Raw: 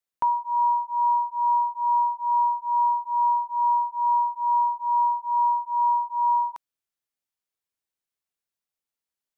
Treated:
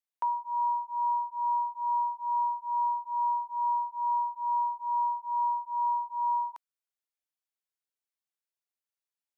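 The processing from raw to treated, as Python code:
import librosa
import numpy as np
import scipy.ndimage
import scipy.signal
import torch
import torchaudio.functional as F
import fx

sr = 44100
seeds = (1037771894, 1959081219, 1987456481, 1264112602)

y = scipy.signal.sosfilt(scipy.signal.butter(2, 460.0, 'highpass', fs=sr, output='sos'), x)
y = y * 10.0 ** (-6.5 / 20.0)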